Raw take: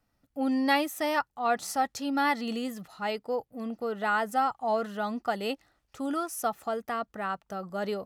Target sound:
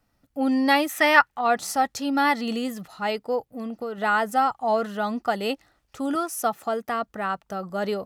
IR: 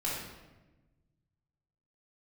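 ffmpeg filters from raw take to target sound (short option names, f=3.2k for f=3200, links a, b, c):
-filter_complex "[0:a]asettb=1/sr,asplit=3[a][b][c];[a]atrim=end=0.894[d];[b]atrim=start=0.89:end=1.41,asetpts=PTS-STARTPTS,afade=t=in:d=0.004:c=qsin,afade=t=out:st=0.516:d=0.004:c=qsin,equalizer=f=1.9k:t=o:w=1.7:g=11.5[e];[c]atrim=start=1.406[f];[d][e]acrossfade=d=0.004:c1=hsin:c2=qsin[g];[g][f]acrossfade=d=0.004:c1=qsin:c2=hsin,asettb=1/sr,asplit=3[h][i][j];[h]atrim=end=3.384[k];[i]atrim=start=3.38:end=3.98,asetpts=PTS-STARTPTS,afade=t=in:d=0.004:c=qsin,afade=t=out:st=0.596:d=0.004:c=qsin,acompressor=threshold=-34dB:ratio=4[l];[j]atrim=start=3.976[m];[k][l]acrossfade=d=0.004:c1=hsin:c2=qsin[n];[n][m]acrossfade=d=0.004:c1=qsin:c2=hsin,asettb=1/sr,asplit=3[o][p][q];[o]atrim=end=6.154[r];[p]atrim=start=6.15:end=6.88,asetpts=PTS-STARTPTS,afade=t=in:d=0.004:c=qsin,afade=t=out:st=0.726:d=0.004:c=qsin,highpass=f=96:w=0.5412,highpass=f=96:w=1.3066[s];[q]atrim=start=6.876[t];[r][s]acrossfade=d=0.004:c1=hsin:c2=qsin[u];[u][t]acrossfade=d=0.004:c1=qsin:c2=hsin,volume=5dB"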